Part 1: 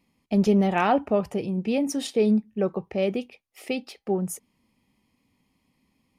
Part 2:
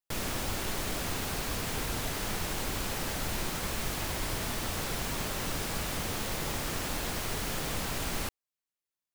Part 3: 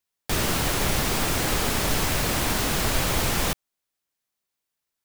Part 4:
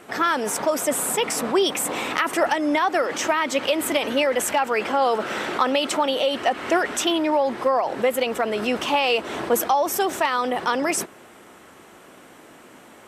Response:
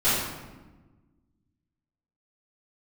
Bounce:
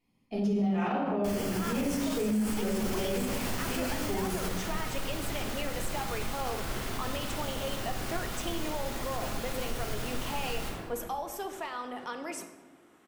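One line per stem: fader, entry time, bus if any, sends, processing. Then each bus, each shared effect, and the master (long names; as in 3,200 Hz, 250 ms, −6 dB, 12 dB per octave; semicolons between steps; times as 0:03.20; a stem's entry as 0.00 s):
−16.0 dB, 0.00 s, send −3.5 dB, no processing
−3.5 dB, 2.40 s, send −10.5 dB, brickwall limiter −31.5 dBFS, peak gain reduction 11 dB
−6.0 dB, 0.95 s, no send, notch filter 3,800 Hz, Q 6.3; tuned comb filter 92 Hz, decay 0.16 s, harmonics all, mix 80%
−17.0 dB, 1.40 s, send −21.5 dB, no processing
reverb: on, RT60 1.2 s, pre-delay 3 ms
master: brickwall limiter −22 dBFS, peak gain reduction 11 dB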